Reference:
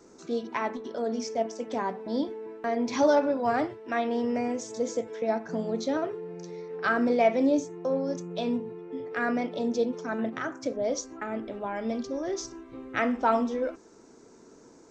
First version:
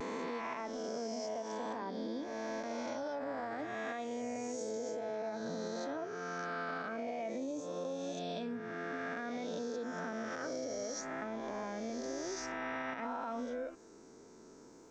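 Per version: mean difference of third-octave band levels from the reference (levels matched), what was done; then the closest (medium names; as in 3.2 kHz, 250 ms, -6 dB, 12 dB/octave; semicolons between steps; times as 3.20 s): 8.0 dB: reverse spectral sustain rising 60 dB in 2.40 s; peak limiter -17 dBFS, peak gain reduction 10.5 dB; compression, threshold -30 dBFS, peak gain reduction 8.5 dB; vibrato 0.54 Hz 26 cents; trim -6.5 dB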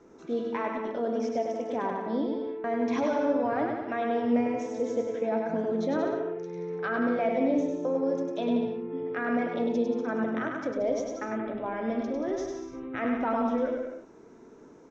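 4.5 dB: peaking EQ 4.6 kHz -9.5 dB 0.29 oct; peak limiter -20 dBFS, peak gain reduction 8.5 dB; distance through air 160 m; on a send: bouncing-ball echo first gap 100 ms, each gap 0.8×, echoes 5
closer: second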